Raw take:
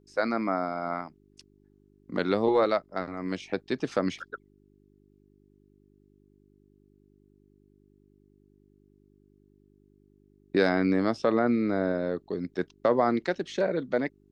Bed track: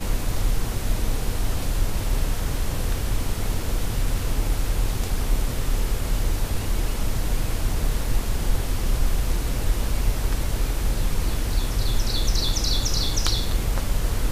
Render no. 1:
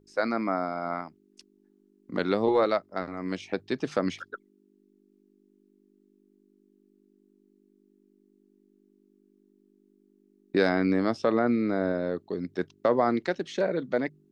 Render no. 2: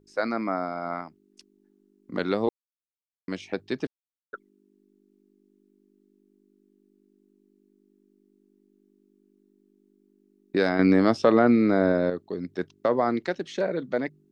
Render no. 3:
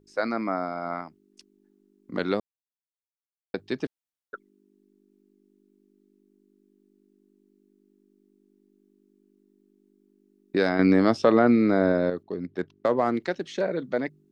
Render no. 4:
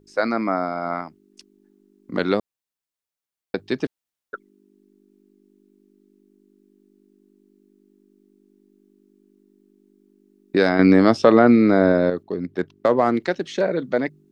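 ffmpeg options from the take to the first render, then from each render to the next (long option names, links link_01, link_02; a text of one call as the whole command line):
ffmpeg -i in.wav -af "bandreject=frequency=50:width_type=h:width=4,bandreject=frequency=100:width_type=h:width=4,bandreject=frequency=150:width_type=h:width=4" out.wav
ffmpeg -i in.wav -filter_complex "[0:a]asettb=1/sr,asplit=3[link_01][link_02][link_03];[link_01]atrim=end=10.794[link_04];[link_02]atrim=start=10.79:end=12.1,asetpts=PTS-STARTPTS,afade=type=in:duration=0.004:curve=qsin,afade=type=out:start_time=1.306:duration=0.004:curve=qsin,acontrast=51[link_05];[link_03]atrim=start=12.096[link_06];[link_04][link_05]acrossfade=duration=0.004:curve1=hsin:curve2=qsin[link_07];[link_07][link_06]acrossfade=duration=0.004:curve1=qsin:curve2=hsin,asplit=5[link_08][link_09][link_10][link_11][link_12];[link_08]atrim=end=2.49,asetpts=PTS-STARTPTS,afade=type=out:start_time=2.486:duration=0.004:curve=hsin[link_13];[link_09]atrim=start=2.49:end=3.28,asetpts=PTS-STARTPTS,volume=0[link_14];[link_10]atrim=start=3.28:end=3.87,asetpts=PTS-STARTPTS,afade=type=in:duration=0.004:curve=hsin,afade=type=out:start_time=0.586:duration=0.004:curve=hsin[link_15];[link_11]atrim=start=3.87:end=4.33,asetpts=PTS-STARTPTS,volume=0[link_16];[link_12]atrim=start=4.33,asetpts=PTS-STARTPTS,afade=type=in:duration=0.004:curve=hsin[link_17];[link_13][link_14][link_15][link_16][link_17]concat=n=5:v=0:a=1" out.wav
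ffmpeg -i in.wav -filter_complex "[0:a]asettb=1/sr,asplit=3[link_01][link_02][link_03];[link_01]atrim=end=12.234[link_04];[link_02]atrim=start=12.23:end=13.2,asetpts=PTS-STARTPTS,afade=type=in:duration=0.004:curve=qsin,afade=type=out:start_time=0.966:duration=0.004:curve=qsin,adynamicsmooth=sensitivity=6:basefreq=3200[link_05];[link_03]atrim=start=13.196[link_06];[link_04][link_05]acrossfade=duration=0.004:curve1=hsin:curve2=qsin[link_07];[link_07][link_06]acrossfade=duration=0.004:curve1=qsin:curve2=hsin,asplit=3[link_08][link_09][link_10];[link_08]atrim=end=2.4,asetpts=PTS-STARTPTS,afade=type=out:start_time=2.396:duration=0.004:curve=hsin[link_11];[link_09]atrim=start=2.4:end=3.54,asetpts=PTS-STARTPTS,volume=0[link_12];[link_10]atrim=start=3.54,asetpts=PTS-STARTPTS,afade=type=in:duration=0.004:curve=hsin[link_13];[link_11][link_12][link_13]concat=n=3:v=0:a=1" out.wav
ffmpeg -i in.wav -af "volume=5.5dB" out.wav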